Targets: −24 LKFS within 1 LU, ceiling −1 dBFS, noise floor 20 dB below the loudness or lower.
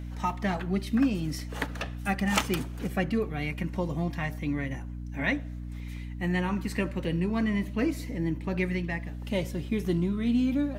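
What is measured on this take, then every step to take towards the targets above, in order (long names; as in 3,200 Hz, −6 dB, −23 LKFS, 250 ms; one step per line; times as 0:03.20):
mains hum 60 Hz; hum harmonics up to 300 Hz; level of the hum −35 dBFS; integrated loudness −30.0 LKFS; sample peak −5.0 dBFS; target loudness −24.0 LKFS
→ hum removal 60 Hz, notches 5
level +6 dB
brickwall limiter −1 dBFS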